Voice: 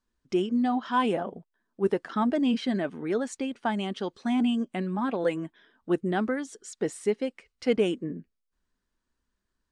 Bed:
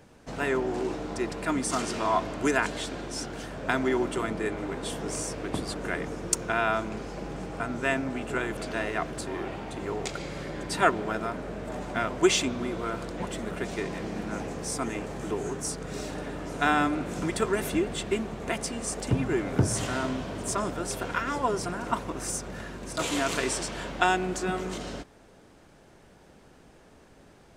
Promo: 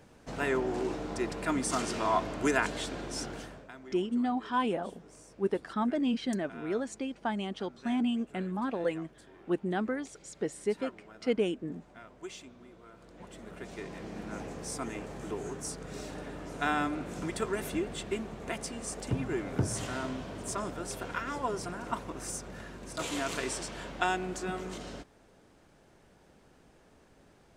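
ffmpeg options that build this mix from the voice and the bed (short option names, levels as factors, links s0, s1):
-filter_complex "[0:a]adelay=3600,volume=0.596[s0];[1:a]volume=4.73,afade=t=out:st=3.3:d=0.39:silence=0.105925,afade=t=in:st=12.94:d=1.47:silence=0.158489[s1];[s0][s1]amix=inputs=2:normalize=0"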